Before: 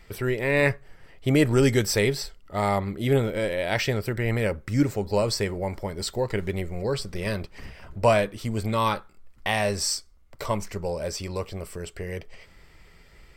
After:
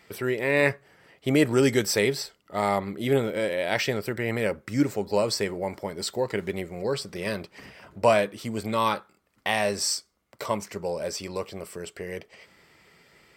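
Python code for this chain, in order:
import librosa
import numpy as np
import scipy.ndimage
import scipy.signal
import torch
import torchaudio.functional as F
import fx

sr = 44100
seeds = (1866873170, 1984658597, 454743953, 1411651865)

y = scipy.signal.sosfilt(scipy.signal.butter(2, 170.0, 'highpass', fs=sr, output='sos'), x)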